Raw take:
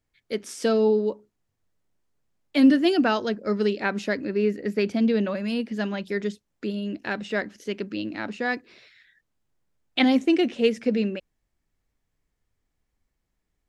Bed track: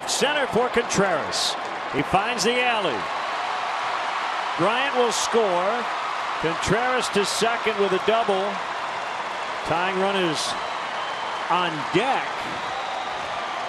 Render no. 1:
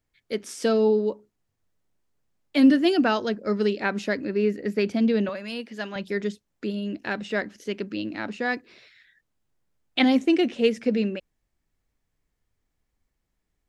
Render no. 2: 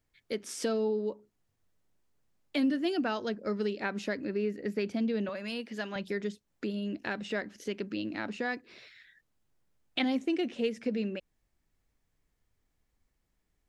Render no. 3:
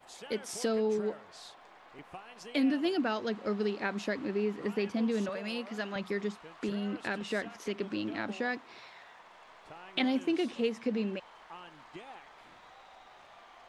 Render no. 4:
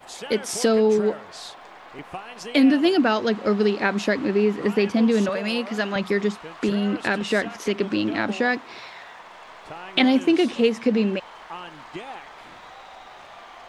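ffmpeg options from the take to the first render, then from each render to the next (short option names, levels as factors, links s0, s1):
-filter_complex "[0:a]asettb=1/sr,asplit=3[s0][s1][s2];[s0]atrim=end=5.294[s3];[s1]atrim=start=5.29:end=5.96,asetpts=PTS-STARTPTS,afade=t=in:d=0.004:c=qsin,afade=t=out:st=0.666:d=0.004:c=qsin,highpass=f=610:p=1[s4];[s2]atrim=start=5.956[s5];[s3][s4]acrossfade=d=0.004:c1=hsin:c2=qsin[s6];[s6][s5]acrossfade=d=0.004:c1=qsin:c2=hsin"
-af "acompressor=threshold=0.0178:ratio=2"
-filter_complex "[1:a]volume=0.0473[s0];[0:a][s0]amix=inputs=2:normalize=0"
-af "volume=3.76"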